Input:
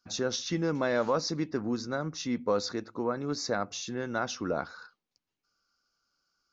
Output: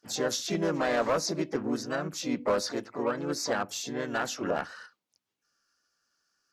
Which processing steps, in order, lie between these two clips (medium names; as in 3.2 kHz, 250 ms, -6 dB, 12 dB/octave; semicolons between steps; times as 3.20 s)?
harmony voices +3 st -3 dB, +12 st -14 dB; bass shelf 96 Hz -9.5 dB; one-sided clip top -20.5 dBFS